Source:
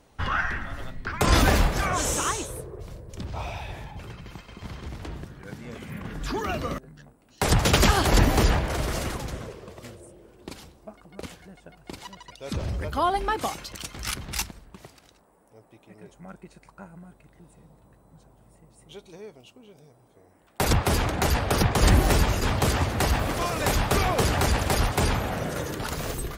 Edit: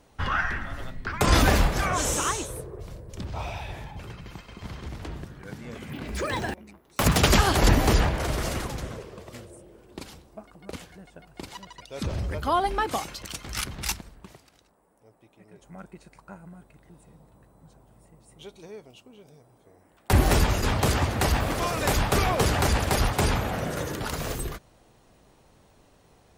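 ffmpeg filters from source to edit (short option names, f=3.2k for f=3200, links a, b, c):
-filter_complex "[0:a]asplit=6[a][b][c][d][e][f];[a]atrim=end=5.934[g];[b]atrim=start=5.93:end=7.68,asetpts=PTS-STARTPTS,asetrate=61740,aresample=44100[h];[c]atrim=start=7.676:end=14.832[i];[d]atrim=start=14.828:end=16.122,asetpts=PTS-STARTPTS,volume=-4.5dB[j];[e]atrim=start=16.118:end=20.632[k];[f]atrim=start=21.918[l];[g][h]acrossfade=d=0.004:c1=hsin:c2=hsin[m];[m][i]acrossfade=d=0.004:c1=hsin:c2=hsin[n];[n][j]acrossfade=d=0.004:c1=hsin:c2=hsin[o];[o][k]acrossfade=d=0.004:c1=hsin:c2=hsin[p];[p][l]acrossfade=d=0.004:c1=hsin:c2=hsin"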